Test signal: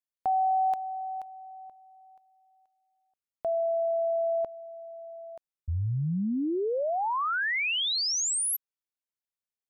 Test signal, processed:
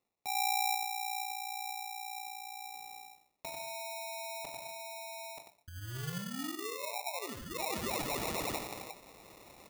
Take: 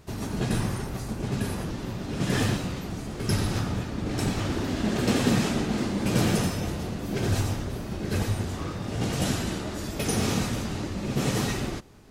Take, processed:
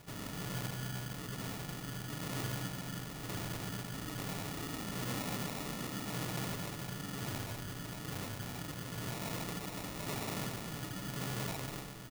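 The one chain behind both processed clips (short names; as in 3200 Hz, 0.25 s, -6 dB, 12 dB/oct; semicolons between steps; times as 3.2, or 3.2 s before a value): in parallel at +3 dB: compressor 5:1, threshold -42 dBFS; on the sum: band shelf 800 Hz -9 dB 3 oct; comb 6.8 ms, depth 66%; soft clip -25.5 dBFS; echo 95 ms -7.5 dB; non-linear reverb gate 0.28 s falling, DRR 4 dB; reverse; upward compressor 4:1, threshold -29 dBFS; reverse; sample-and-hold 28×; tilt +2 dB/oct; gain -8.5 dB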